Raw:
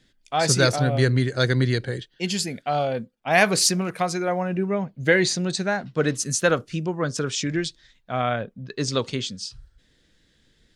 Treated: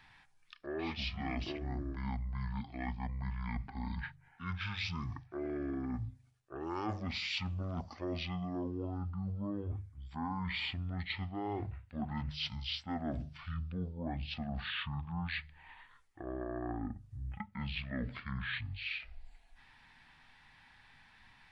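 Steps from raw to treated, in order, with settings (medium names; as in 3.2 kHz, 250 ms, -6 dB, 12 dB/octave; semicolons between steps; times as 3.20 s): hum notches 50/100/150/200/250/300 Hz; speed mistake 15 ips tape played at 7.5 ips; reverse; compression 8:1, threshold -32 dBFS, peak gain reduction 19.5 dB; reverse; tape noise reduction on one side only encoder only; trim -3.5 dB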